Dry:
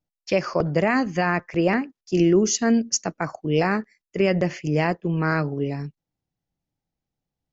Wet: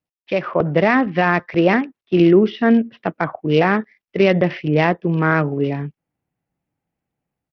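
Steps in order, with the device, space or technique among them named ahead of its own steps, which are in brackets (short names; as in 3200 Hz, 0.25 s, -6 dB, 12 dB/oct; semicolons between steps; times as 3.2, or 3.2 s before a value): Bluetooth headset (HPF 120 Hz 6 dB/oct; AGC gain up to 7.5 dB; downsampling 8000 Hz; SBC 64 kbps 44100 Hz)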